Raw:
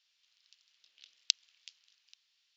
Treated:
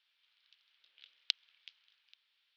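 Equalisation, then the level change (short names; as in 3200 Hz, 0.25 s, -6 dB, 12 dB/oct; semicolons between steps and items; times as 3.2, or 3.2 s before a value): speaker cabinet 500–3200 Hz, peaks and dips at 690 Hz -7 dB, 1100 Hz -4 dB, 1900 Hz -4 dB, 2700 Hz -5 dB; +6.0 dB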